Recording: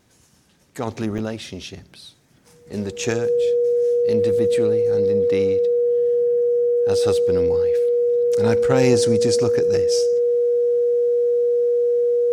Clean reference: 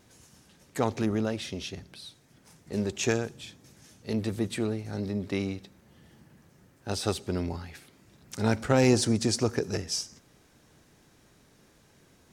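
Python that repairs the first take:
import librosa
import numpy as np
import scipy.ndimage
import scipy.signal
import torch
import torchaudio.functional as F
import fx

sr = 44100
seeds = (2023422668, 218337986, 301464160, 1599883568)

y = fx.notch(x, sr, hz=480.0, q=30.0)
y = fx.fix_interpolate(y, sr, at_s=(1.18,), length_ms=6.4)
y = fx.fix_level(y, sr, at_s=0.87, step_db=-3.0)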